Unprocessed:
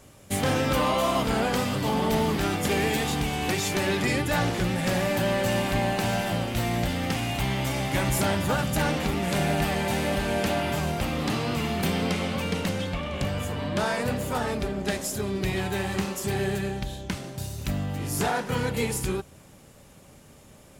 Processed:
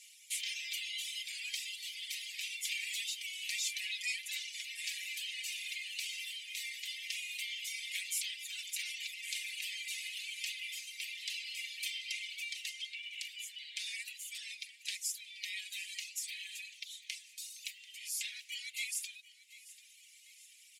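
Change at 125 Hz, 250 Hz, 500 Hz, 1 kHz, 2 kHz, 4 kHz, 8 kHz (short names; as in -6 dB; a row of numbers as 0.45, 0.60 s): under -40 dB, under -40 dB, under -40 dB, under -40 dB, -10.0 dB, -5.0 dB, -5.5 dB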